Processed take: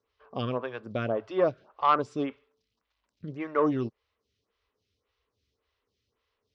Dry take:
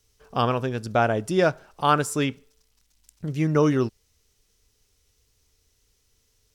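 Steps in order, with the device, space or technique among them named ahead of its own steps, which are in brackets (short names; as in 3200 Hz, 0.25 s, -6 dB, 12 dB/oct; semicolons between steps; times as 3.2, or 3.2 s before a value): vibe pedal into a guitar amplifier (photocell phaser 1.8 Hz; tube stage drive 13 dB, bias 0.2; speaker cabinet 81–4100 Hz, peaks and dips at 150 Hz -7 dB, 560 Hz +4 dB, 1100 Hz +8 dB); gain -3 dB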